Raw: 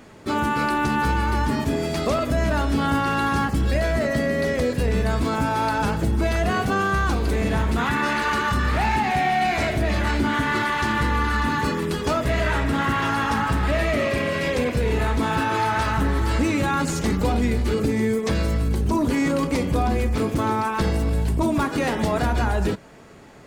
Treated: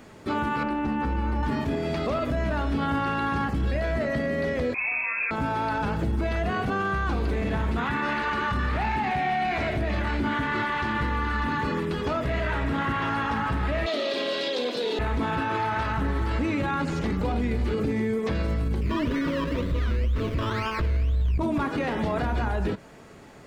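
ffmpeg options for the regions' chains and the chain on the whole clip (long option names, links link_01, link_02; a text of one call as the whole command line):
ffmpeg -i in.wav -filter_complex "[0:a]asettb=1/sr,asplit=3[link_01][link_02][link_03];[link_01]atrim=end=0.634[link_04];[link_02]atrim=start=0.63:end=1.43,asetpts=PTS-STARTPTS,afade=type=in:duration=0.004:curve=qsin,afade=type=out:start_time=0.796:duration=0.004:curve=qsin,lowpass=frequency=1100:poles=1,aecho=1:1:3.8:0.53,atrim=end_sample=35280[link_05];[link_03]atrim=start=1.426[link_06];[link_04][link_05]acrossfade=duration=0.004:curve1=hsin:curve2=qsin[link_07];[link_07][link_06]acrossfade=duration=0.004:curve1=qsin:curve2=hsin,asettb=1/sr,asplit=3[link_08][link_09][link_10];[link_08]atrim=end=4.744[link_11];[link_09]atrim=start=4.74:end=5.31,asetpts=PTS-STARTPTS,afade=type=in:duration=0.004:curve=qsin,afade=type=out:start_time=0.566:duration=0.004:curve=qsin,highpass=frequency=77:width=0.5412,highpass=frequency=77:width=1.3066,lowpass=frequency=2300:width_type=q:width=0.5098,lowpass=frequency=2300:width_type=q:width=0.6013,lowpass=frequency=2300:width_type=q:width=0.9,lowpass=frequency=2300:width_type=q:width=2.563,afreqshift=-2700[link_12];[link_10]atrim=start=5.306[link_13];[link_11][link_12]acrossfade=duration=0.004:curve1=hsin:curve2=qsin[link_14];[link_14][link_13]acrossfade=duration=0.004:curve1=qsin:curve2=hsin,asettb=1/sr,asplit=3[link_15][link_16][link_17];[link_15]atrim=end=13.864[link_18];[link_16]atrim=start=13.86:end=14.99,asetpts=PTS-STARTPTS,afade=type=in:duration=0.004:curve=qsin,afade=type=out:start_time=1.126:duration=0.004:curve=qsin,highpass=frequency=280:width=0.5412,highpass=frequency=280:width=1.3066,highshelf=frequency=2900:width_type=q:width=3:gain=9,bandreject=frequency=1100:width=19[link_19];[link_17]atrim=start=14.986[link_20];[link_18][link_19]acrossfade=duration=0.004:curve1=hsin:curve2=qsin[link_21];[link_21][link_20]acrossfade=duration=0.004:curve1=qsin:curve2=hsin,asettb=1/sr,asplit=3[link_22][link_23][link_24];[link_22]atrim=end=18.814[link_25];[link_23]atrim=start=18.81:end=21.38,asetpts=PTS-STARTPTS,afade=type=in:duration=0.004:curve=qsin,afade=type=out:start_time=2.566:duration=0.004:curve=qsin,asubboost=boost=10.5:cutoff=80,acrusher=samples=16:mix=1:aa=0.000001:lfo=1:lforange=9.6:lforate=2,asuperstop=centerf=790:order=8:qfactor=4[link_26];[link_24]atrim=start=21.376[link_27];[link_25][link_26]acrossfade=duration=0.004:curve1=hsin:curve2=qsin[link_28];[link_28][link_27]acrossfade=duration=0.004:curve1=qsin:curve2=hsin,acrossover=split=4100[link_29][link_30];[link_30]acompressor=threshold=-55dB:ratio=4:attack=1:release=60[link_31];[link_29][link_31]amix=inputs=2:normalize=0,alimiter=limit=-17.5dB:level=0:latency=1:release=36,volume=-1.5dB" out.wav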